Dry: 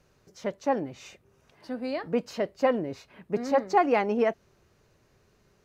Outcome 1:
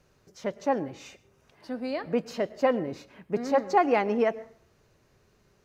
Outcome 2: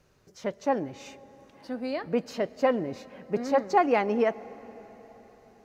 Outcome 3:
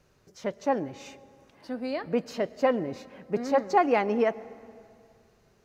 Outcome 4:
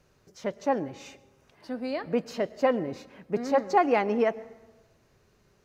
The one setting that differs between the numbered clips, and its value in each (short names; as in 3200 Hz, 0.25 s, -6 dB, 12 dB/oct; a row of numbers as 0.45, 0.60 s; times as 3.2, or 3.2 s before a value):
plate-style reverb, RT60: 0.52, 5.2, 2.4, 1.1 s